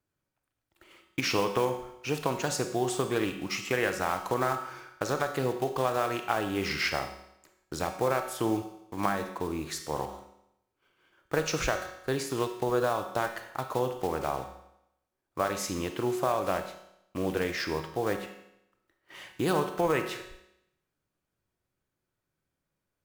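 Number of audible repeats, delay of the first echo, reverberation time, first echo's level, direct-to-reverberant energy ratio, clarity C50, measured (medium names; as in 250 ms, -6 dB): no echo, no echo, 0.80 s, no echo, 6.5 dB, 8.0 dB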